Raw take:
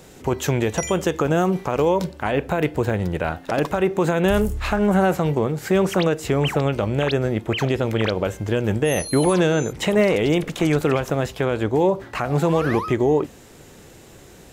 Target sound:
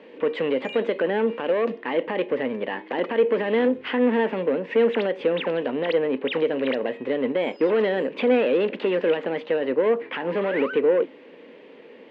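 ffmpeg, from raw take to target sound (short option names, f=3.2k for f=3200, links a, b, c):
-af "asetrate=52920,aresample=44100,asoftclip=type=tanh:threshold=-16.5dB,highpass=f=240:w=0.5412,highpass=f=240:w=1.3066,equalizer=f=260:t=q:w=4:g=7,equalizer=f=480:t=q:w=4:g=9,equalizer=f=700:t=q:w=4:g=-7,equalizer=f=1.3k:t=q:w=4:g=-5,equalizer=f=1.9k:t=q:w=4:g=4,equalizer=f=2.8k:t=q:w=4:g=5,lowpass=f=3k:w=0.5412,lowpass=f=3k:w=1.3066,volume=-2dB"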